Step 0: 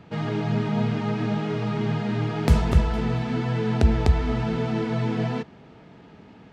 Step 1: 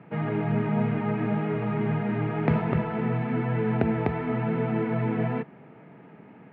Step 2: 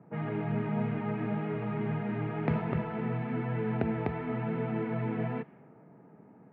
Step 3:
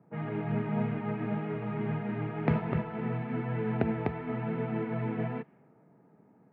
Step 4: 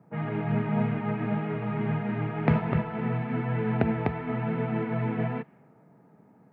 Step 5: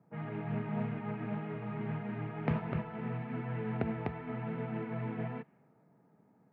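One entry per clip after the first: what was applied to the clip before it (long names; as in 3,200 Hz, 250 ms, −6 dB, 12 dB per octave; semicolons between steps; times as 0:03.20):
elliptic band-pass filter 130–2,300 Hz, stop band 60 dB
low-pass that shuts in the quiet parts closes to 940 Hz, open at −22.5 dBFS; level −6 dB
expander for the loud parts 1.5 to 1, over −43 dBFS; level +3 dB
parametric band 360 Hz −3.5 dB 0.93 octaves; level +5 dB
highs frequency-modulated by the lows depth 0.2 ms; level −9 dB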